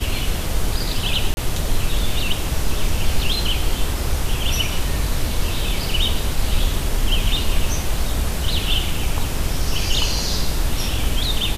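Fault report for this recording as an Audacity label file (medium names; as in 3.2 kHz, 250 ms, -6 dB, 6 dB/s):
1.340000	1.370000	dropout 31 ms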